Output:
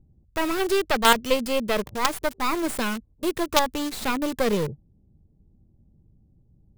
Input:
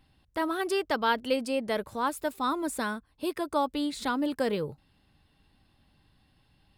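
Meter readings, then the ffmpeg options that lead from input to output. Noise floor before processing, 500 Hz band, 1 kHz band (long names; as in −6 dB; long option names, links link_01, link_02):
−67 dBFS, +5.0 dB, +5.0 dB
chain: -filter_complex "[0:a]equalizer=frequency=280:width_type=o:width=0.2:gain=-10,acrossover=split=440[link_01][link_02];[link_02]acrusher=bits=4:dc=4:mix=0:aa=0.000001[link_03];[link_01][link_03]amix=inputs=2:normalize=0,volume=8.5dB"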